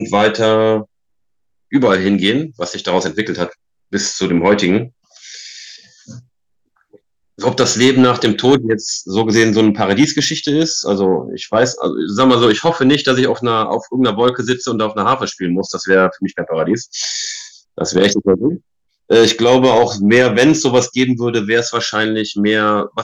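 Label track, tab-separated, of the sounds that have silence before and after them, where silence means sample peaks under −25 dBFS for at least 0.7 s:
1.730000	6.110000	sound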